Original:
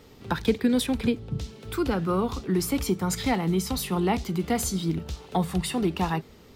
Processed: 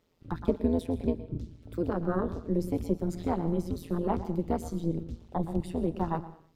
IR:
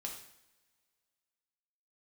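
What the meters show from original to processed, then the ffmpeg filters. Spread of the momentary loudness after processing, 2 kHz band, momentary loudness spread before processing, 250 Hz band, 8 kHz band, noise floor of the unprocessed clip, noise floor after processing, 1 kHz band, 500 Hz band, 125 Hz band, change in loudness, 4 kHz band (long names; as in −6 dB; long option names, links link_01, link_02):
7 LU, −14.0 dB, 7 LU, −4.5 dB, −20.5 dB, −51 dBFS, −60 dBFS, −6.0 dB, −3.0 dB, −4.0 dB, −5.0 dB, −20.5 dB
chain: -filter_complex "[0:a]afwtdn=0.0447,asplit=2[link_01][link_02];[1:a]atrim=start_sample=2205,afade=type=out:start_time=0.29:duration=0.01,atrim=end_sample=13230,adelay=116[link_03];[link_02][link_03]afir=irnorm=-1:irlink=0,volume=-11.5dB[link_04];[link_01][link_04]amix=inputs=2:normalize=0,tremolo=f=170:d=0.947"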